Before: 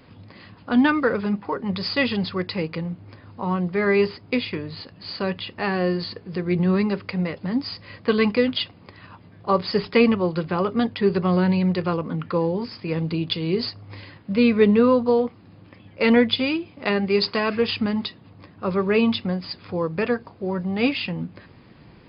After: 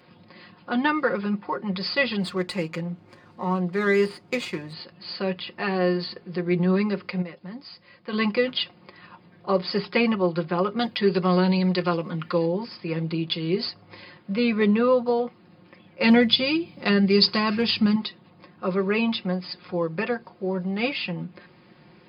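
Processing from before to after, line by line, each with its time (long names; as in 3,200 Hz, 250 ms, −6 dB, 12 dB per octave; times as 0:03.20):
0:02.20–0:04.73: windowed peak hold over 3 samples
0:07.22–0:08.13: clip gain −8.5 dB
0:10.79–0:12.46: high-shelf EQ 3,200 Hz +11.5 dB
0:16.03–0:17.96: bass and treble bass +10 dB, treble +11 dB
whole clip: high-pass filter 200 Hz 6 dB per octave; comb filter 5.6 ms, depth 61%; level −2.5 dB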